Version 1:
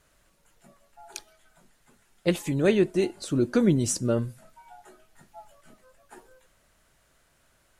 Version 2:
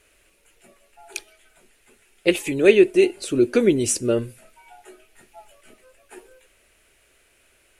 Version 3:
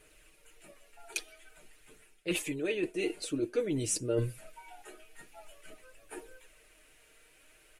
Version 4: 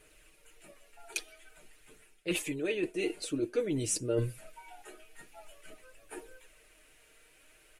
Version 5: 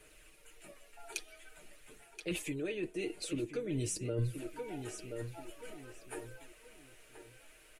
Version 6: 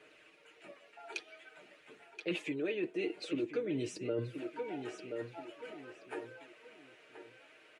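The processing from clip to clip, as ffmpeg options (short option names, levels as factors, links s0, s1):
-af "equalizer=f=160:t=o:w=0.67:g=-10,equalizer=f=400:t=o:w=0.67:g=9,equalizer=f=1000:t=o:w=0.67:g=-4,equalizer=f=2500:t=o:w=0.67:g=12,equalizer=f=10000:t=o:w=0.67:g=7,volume=1.19"
-af "aecho=1:1:6.5:0.62,areverse,acompressor=threshold=0.0562:ratio=12,areverse,flanger=delay=0.1:depth=4.3:regen=67:speed=0.49:shape=sinusoidal,volume=1.12"
-af anull
-filter_complex "[0:a]asplit=2[s0][s1];[s1]adelay=1027,lowpass=f=4100:p=1,volume=0.266,asplit=2[s2][s3];[s3]adelay=1027,lowpass=f=4100:p=1,volume=0.31,asplit=2[s4][s5];[s5]adelay=1027,lowpass=f=4100:p=1,volume=0.31[s6];[s0][s2][s4][s6]amix=inputs=4:normalize=0,acrossover=split=190[s7][s8];[s8]acompressor=threshold=0.0112:ratio=3[s9];[s7][s9]amix=inputs=2:normalize=0,volume=1.12"
-af "highpass=230,lowpass=3400,volume=1.41"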